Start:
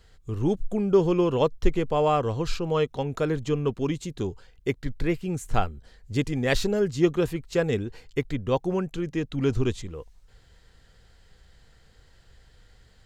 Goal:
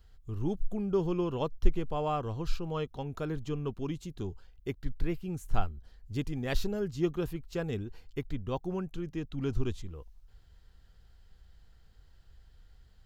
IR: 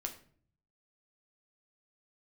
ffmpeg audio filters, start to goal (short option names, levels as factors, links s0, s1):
-af "equalizer=f=125:t=o:w=1:g=-6,equalizer=f=250:t=o:w=1:g=-5,equalizer=f=500:t=o:w=1:g=-10,equalizer=f=1000:t=o:w=1:g=-4,equalizer=f=2000:t=o:w=1:g=-10,equalizer=f=4000:t=o:w=1:g=-5,equalizer=f=8000:t=o:w=1:g=-12"